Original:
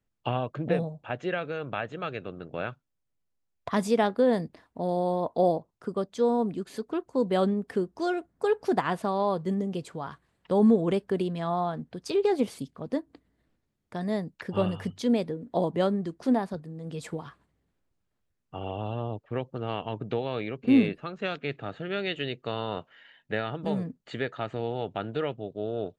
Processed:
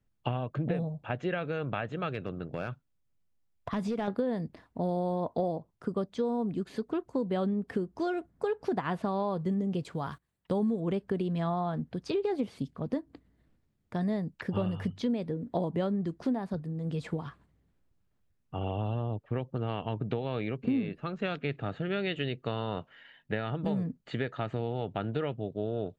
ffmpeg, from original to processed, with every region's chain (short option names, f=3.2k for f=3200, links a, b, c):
-filter_complex "[0:a]asettb=1/sr,asplit=3[a][b][c];[a]atrim=end=2.144[d];[b]atrim=start=2.14:end=4.08,asetpts=PTS-STARTPTS,afade=t=in:d=0.004:c=qsin,afade=t=out:st=1.936:d=0.004:c=qsin,acompressor=threshold=-30dB:ratio=3:attack=3.2:release=140:knee=1:detection=peak,asoftclip=type=hard:threshold=-26dB[e];[c]atrim=start=4.076[f];[d][e]acrossfade=d=0.004:c1=hsin:c2=qsin[g];[g][f]acrossfade=d=0.004:c1=qsin:c2=hsin,asettb=1/sr,asplit=3[h][i][j];[h]atrim=end=9.844[k];[i]atrim=start=9.84:end=10.8,asetpts=PTS-STARTPTS,afade=t=in:d=0.004:c=qsin,afade=t=out:st=0.956:d=0.004:c=qsin,aemphasis=mode=production:type=50fm,agate=range=-15dB:threshold=-54dB:ratio=16:release=100:detection=peak[l];[j]atrim=start=10.796[m];[k][l]acrossfade=d=0.004:c1=hsin:c2=qsin[n];[n][m]acrossfade=d=0.004:c1=qsin:c2=hsin,acrossover=split=5300[o][p];[p]acompressor=threshold=-59dB:ratio=4:attack=1:release=60[q];[o][q]amix=inputs=2:normalize=0,bass=f=250:g=6,treble=f=4k:g=-3,acompressor=threshold=-27dB:ratio=6"